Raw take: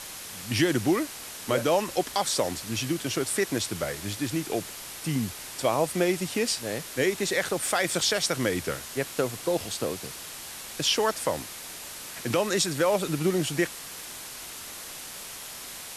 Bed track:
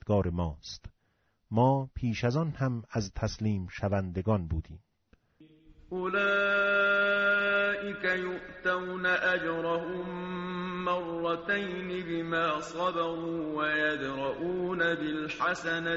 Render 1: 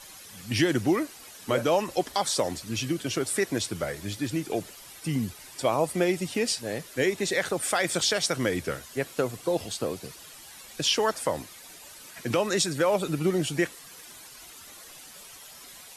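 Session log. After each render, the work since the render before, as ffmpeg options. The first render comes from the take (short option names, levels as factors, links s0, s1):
-af "afftdn=nr=11:nf=-41"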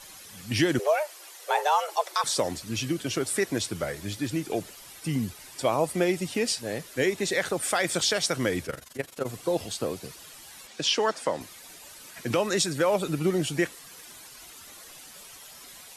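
-filter_complex "[0:a]asettb=1/sr,asplit=3[s0][s1][s2];[s0]atrim=end=0.794[s3];[s1]atrim=start=0.79:end=2.24,asetpts=PTS-STARTPTS,afade=t=in:d=0.004:c=qsin,afade=t=out:st=1.446:d=0.004:c=qsin,afreqshift=300[s4];[s2]atrim=start=2.236[s5];[s3][s4]acrossfade=d=0.004:c1=hsin:c2=qsin[s6];[s6][s5]acrossfade=d=0.004:c1=qsin:c2=hsin,asplit=3[s7][s8][s9];[s7]afade=t=out:st=8.66:d=0.02[s10];[s8]tremolo=f=23:d=0.857,afade=t=in:st=8.66:d=0.02,afade=t=out:st=9.25:d=0.02[s11];[s9]afade=t=in:st=9.25:d=0.02[s12];[s10][s11][s12]amix=inputs=3:normalize=0,asettb=1/sr,asplit=3[s13][s14][s15];[s13]atrim=end=10.674[s16];[s14]atrim=start=10.67:end=11.41,asetpts=PTS-STARTPTS,afade=t=in:d=0.004:c=qsin,afade=t=out:st=0.736:d=0.004:c=qsin,highpass=170,lowpass=7000[s17];[s15]atrim=start=11.406[s18];[s16][s17]acrossfade=d=0.004:c1=hsin:c2=qsin[s19];[s19][s18]acrossfade=d=0.004:c1=qsin:c2=hsin"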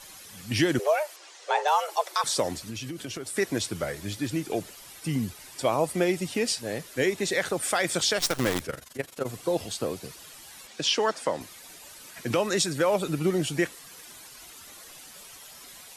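-filter_complex "[0:a]asettb=1/sr,asplit=3[s0][s1][s2];[s0]atrim=end=1.164[s3];[s1]atrim=start=1.16:end=1.68,asetpts=PTS-STARTPTS,afade=t=in:d=0.004:c=qsin,afade=t=out:st=0.516:d=0.004:c=qsin,lowpass=f=7300:w=0.5412,lowpass=f=7300:w=1.3066[s4];[s2]atrim=start=1.676[s5];[s3][s4]acrossfade=d=0.004:c1=hsin:c2=qsin[s6];[s6][s5]acrossfade=d=0.004:c1=qsin:c2=hsin,asettb=1/sr,asplit=3[s7][s8][s9];[s7]atrim=end=2.694[s10];[s8]atrim=start=2.69:end=3.37,asetpts=PTS-STARTPTS,afade=t=in:d=0.004:c=qsin,afade=t=out:st=0.676:d=0.004:c=qsin,acompressor=threshold=0.0251:ratio=6:attack=3.2:release=140:knee=1:detection=peak[s11];[s9]atrim=start=3.366[s12];[s10][s11]acrossfade=d=0.004:c1=hsin:c2=qsin[s13];[s13][s12]acrossfade=d=0.004:c1=qsin:c2=hsin,asettb=1/sr,asplit=3[s14][s15][s16];[s14]atrim=end=8.194[s17];[s15]atrim=start=8.19:end=8.61,asetpts=PTS-STARTPTS,afade=t=in:d=0.004:c=qsin,afade=t=out:st=0.416:d=0.004:c=qsin,acrusher=bits=5:dc=4:mix=0:aa=0.000001[s18];[s16]atrim=start=8.606[s19];[s17][s18]acrossfade=d=0.004:c1=hsin:c2=qsin[s20];[s20][s19]acrossfade=d=0.004:c1=qsin:c2=hsin"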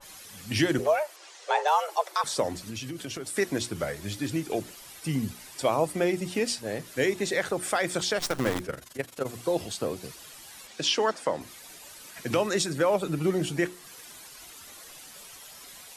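-af "bandreject=f=60:t=h:w=6,bandreject=f=120:t=h:w=6,bandreject=f=180:t=h:w=6,bandreject=f=240:t=h:w=6,bandreject=f=300:t=h:w=6,bandreject=f=360:t=h:w=6,adynamicequalizer=threshold=0.01:dfrequency=2100:dqfactor=0.7:tfrequency=2100:tqfactor=0.7:attack=5:release=100:ratio=0.375:range=3:mode=cutabove:tftype=highshelf"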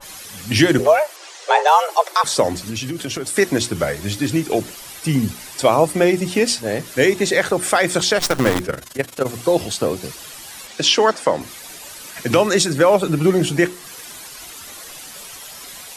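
-af "volume=3.35"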